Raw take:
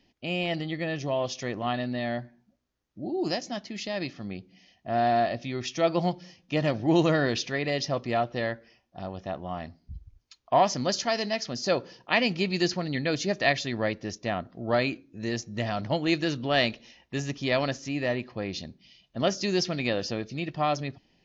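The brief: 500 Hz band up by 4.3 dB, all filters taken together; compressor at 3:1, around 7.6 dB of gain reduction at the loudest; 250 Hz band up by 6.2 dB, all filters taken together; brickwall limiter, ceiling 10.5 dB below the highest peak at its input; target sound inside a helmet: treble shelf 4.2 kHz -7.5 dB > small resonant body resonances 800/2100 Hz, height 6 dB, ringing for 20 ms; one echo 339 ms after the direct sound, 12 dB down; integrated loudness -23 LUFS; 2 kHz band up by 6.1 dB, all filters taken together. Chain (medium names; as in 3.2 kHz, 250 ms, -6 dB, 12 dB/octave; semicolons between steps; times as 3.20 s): peaking EQ 250 Hz +7 dB; peaking EQ 500 Hz +3.5 dB; peaking EQ 2 kHz +8.5 dB; compression 3:1, threshold -23 dBFS; peak limiter -18 dBFS; treble shelf 4.2 kHz -7.5 dB; delay 339 ms -12 dB; small resonant body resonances 800/2100 Hz, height 6 dB, ringing for 20 ms; trim +6 dB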